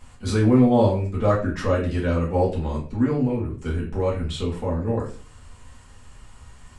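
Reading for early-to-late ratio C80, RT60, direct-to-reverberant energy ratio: 12.5 dB, 0.40 s, -6.5 dB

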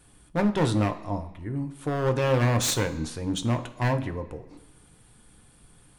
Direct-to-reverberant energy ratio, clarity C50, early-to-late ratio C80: 6.0 dB, 13.5 dB, 15.5 dB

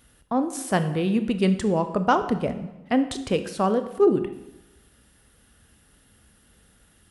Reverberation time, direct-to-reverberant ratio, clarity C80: 1.0 s, 9.5 dB, 13.5 dB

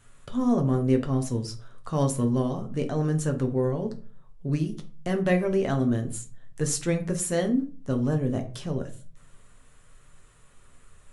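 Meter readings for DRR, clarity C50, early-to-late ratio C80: 3.5 dB, 13.5 dB, 18.0 dB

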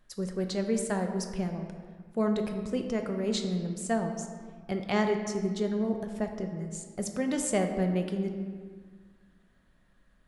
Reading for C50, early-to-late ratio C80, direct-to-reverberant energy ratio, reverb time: 6.5 dB, 7.5 dB, 4.0 dB, 1.7 s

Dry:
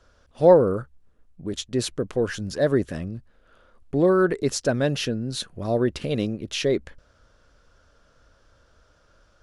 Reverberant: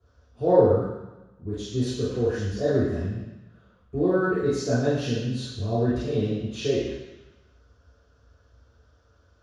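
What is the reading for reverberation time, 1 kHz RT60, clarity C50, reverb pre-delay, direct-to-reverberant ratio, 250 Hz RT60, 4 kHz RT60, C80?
1.0 s, 1.1 s, -1.5 dB, 3 ms, -13.0 dB, 1.1 s, 1.1 s, 2.5 dB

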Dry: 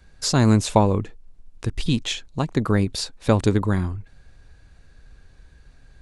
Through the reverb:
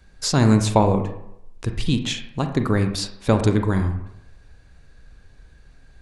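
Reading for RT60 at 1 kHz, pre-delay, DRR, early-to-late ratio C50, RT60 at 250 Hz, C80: 0.80 s, 30 ms, 6.5 dB, 8.5 dB, 0.70 s, 11.5 dB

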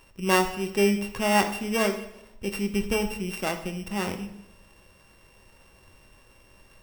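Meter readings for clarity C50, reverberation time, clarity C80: 10.0 dB, 0.85 s, 12.5 dB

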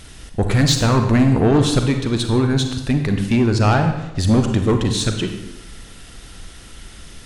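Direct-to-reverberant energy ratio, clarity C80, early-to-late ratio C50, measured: 5.0 dB, 9.0 dB, 6.5 dB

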